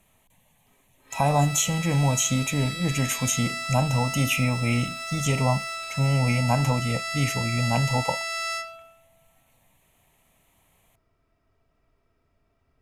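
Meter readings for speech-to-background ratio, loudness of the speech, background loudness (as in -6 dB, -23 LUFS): 6.0 dB, -25.0 LUFS, -31.0 LUFS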